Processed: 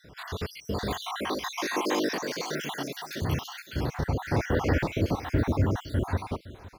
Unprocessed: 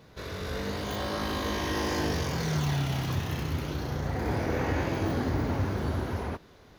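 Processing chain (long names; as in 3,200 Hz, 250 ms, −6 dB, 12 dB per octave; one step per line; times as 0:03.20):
time-frequency cells dropped at random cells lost 60%
0:00.93–0:03.22: high-pass filter 250 Hz 24 dB per octave
single-tap delay 514 ms −17.5 dB
level +5 dB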